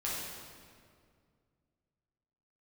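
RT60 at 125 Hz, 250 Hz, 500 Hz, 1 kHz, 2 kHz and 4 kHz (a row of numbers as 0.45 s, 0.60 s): 2.9 s, 2.6 s, 2.3 s, 2.0 s, 1.7 s, 1.5 s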